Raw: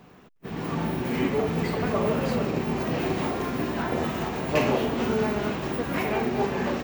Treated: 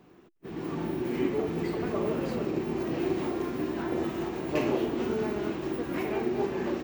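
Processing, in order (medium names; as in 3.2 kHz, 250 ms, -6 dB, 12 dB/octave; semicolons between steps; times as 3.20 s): peaking EQ 340 Hz +13.5 dB 0.38 oct; trim -8 dB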